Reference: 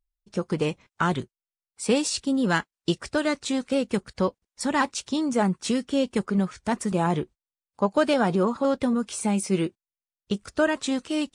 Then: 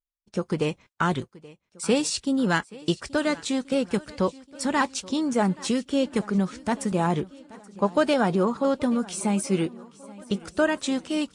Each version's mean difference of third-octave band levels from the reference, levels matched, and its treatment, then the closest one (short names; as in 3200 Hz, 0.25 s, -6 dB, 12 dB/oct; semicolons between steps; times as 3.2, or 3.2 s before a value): 2.0 dB: gate -53 dBFS, range -15 dB; on a send: swung echo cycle 1.38 s, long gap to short 1.5:1, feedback 41%, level -21 dB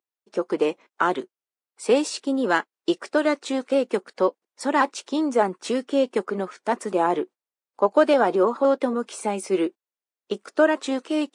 5.0 dB: HPF 310 Hz 24 dB/oct; high shelf 2200 Hz -11 dB; gain +6 dB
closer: first